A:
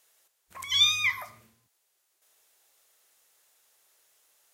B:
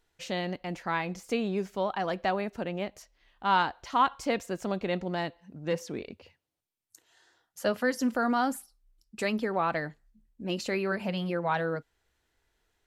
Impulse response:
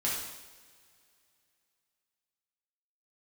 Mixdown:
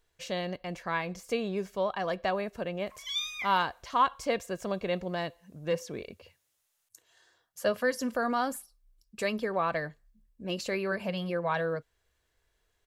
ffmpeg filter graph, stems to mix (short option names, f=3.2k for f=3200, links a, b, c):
-filter_complex "[0:a]highpass=f=810:p=1,adelay=2350,volume=-11dB[a];[1:a]highshelf=f=12k:g=4.5,aecho=1:1:1.8:0.38,volume=-1.5dB[b];[a][b]amix=inputs=2:normalize=0"